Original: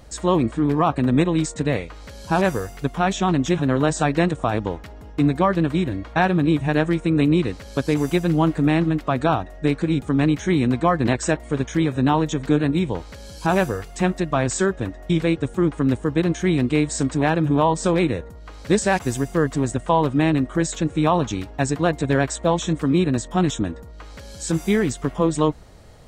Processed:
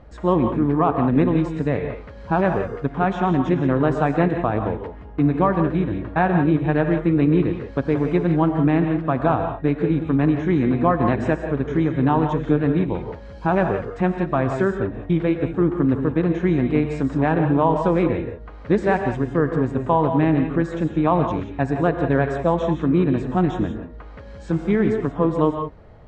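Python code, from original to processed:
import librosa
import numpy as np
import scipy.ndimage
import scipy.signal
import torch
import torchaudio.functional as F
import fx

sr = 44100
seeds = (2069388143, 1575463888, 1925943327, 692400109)

y = scipy.signal.sosfilt(scipy.signal.butter(2, 1800.0, 'lowpass', fs=sr, output='sos'), x)
y = fx.rev_gated(y, sr, seeds[0], gate_ms=200, shape='rising', drr_db=5.5)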